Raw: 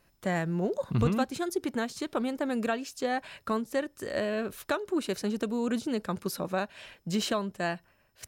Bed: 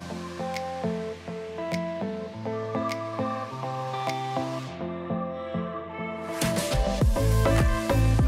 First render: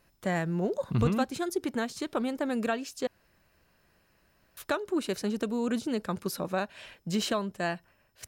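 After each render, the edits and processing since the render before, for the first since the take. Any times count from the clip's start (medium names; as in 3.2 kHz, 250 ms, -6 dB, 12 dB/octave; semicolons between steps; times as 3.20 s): 3.07–4.57 s: room tone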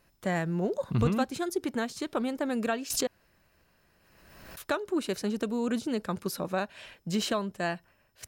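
2.90–4.68 s: swell ahead of each attack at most 38 dB/s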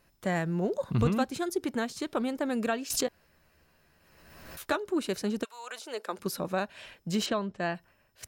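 3.06–4.76 s: doubling 13 ms -5 dB; 5.43–6.18 s: high-pass 1.2 kHz -> 280 Hz 24 dB/octave; 7.26–7.75 s: distance through air 110 m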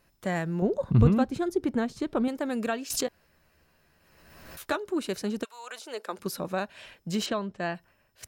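0.62–2.28 s: tilt EQ -2.5 dB/octave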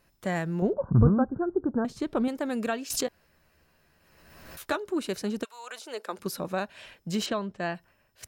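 0.73–1.85 s: steep low-pass 1.6 kHz 96 dB/octave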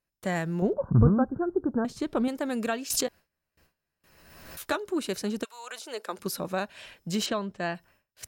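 peaking EQ 13 kHz +3.5 dB 2.5 oct; gate with hold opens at -53 dBFS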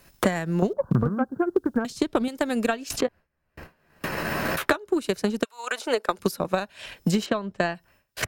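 transient shaper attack +9 dB, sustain -6 dB; three bands compressed up and down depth 100%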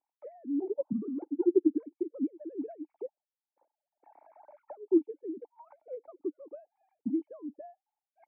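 formants replaced by sine waves; cascade formant filter u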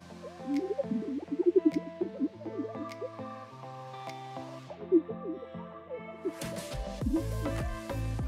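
add bed -12.5 dB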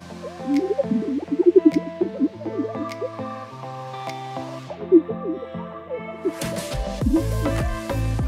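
trim +10.5 dB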